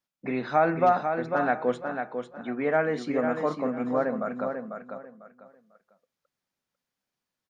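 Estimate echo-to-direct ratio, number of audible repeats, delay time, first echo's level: -6.0 dB, 3, 497 ms, -6.5 dB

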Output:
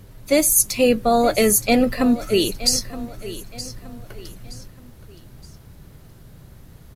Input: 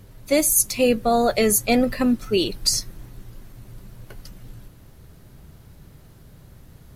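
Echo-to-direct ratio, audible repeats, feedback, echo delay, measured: -14.5 dB, 3, 36%, 921 ms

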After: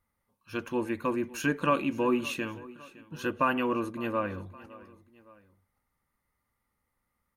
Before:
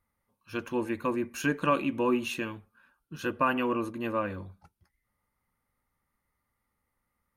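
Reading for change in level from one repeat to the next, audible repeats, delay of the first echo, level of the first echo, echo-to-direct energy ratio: -5.5 dB, 2, 562 ms, -20.0 dB, -19.0 dB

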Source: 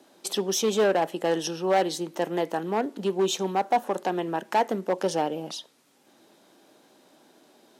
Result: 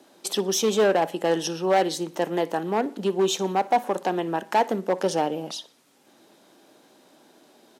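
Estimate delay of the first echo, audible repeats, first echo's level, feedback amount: 60 ms, 2, -21.0 dB, 42%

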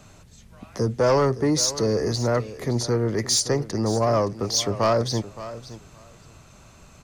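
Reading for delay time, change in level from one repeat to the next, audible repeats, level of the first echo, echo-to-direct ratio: 569 ms, -16.5 dB, 2, -15.0 dB, -15.0 dB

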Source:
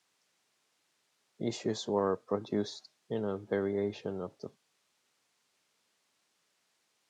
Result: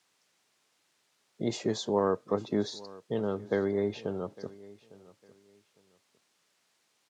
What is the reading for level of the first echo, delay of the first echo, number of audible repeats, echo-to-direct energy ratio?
-20.5 dB, 855 ms, 2, -20.5 dB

